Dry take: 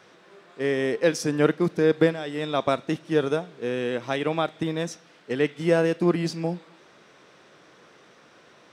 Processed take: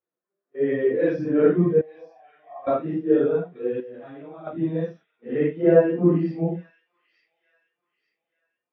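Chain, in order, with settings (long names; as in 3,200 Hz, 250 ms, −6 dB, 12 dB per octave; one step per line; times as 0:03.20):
random phases in long frames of 200 ms
noise gate −43 dBFS, range −15 dB
0:01.81–0:02.67: formant resonators in series a
0:03.80–0:04.47: output level in coarse steps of 18 dB
high-frequency loss of the air 280 metres
delay with a high-pass on its return 887 ms, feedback 49%, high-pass 2,200 Hz, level −9 dB
every bin expanded away from the loudest bin 1.5 to 1
level +6.5 dB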